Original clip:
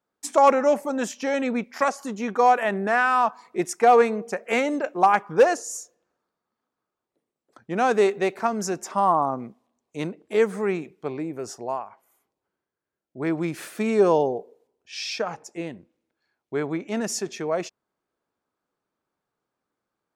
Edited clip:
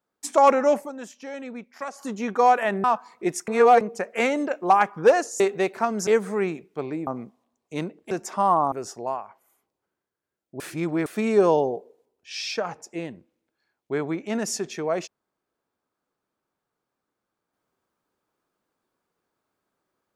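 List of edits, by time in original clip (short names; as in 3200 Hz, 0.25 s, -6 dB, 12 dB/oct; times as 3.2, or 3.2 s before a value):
0.77–2.06 dip -11 dB, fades 0.15 s
2.84–3.17 cut
3.81–4.14 reverse
5.73–8.02 cut
8.69–9.3 swap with 10.34–11.34
13.22–13.68 reverse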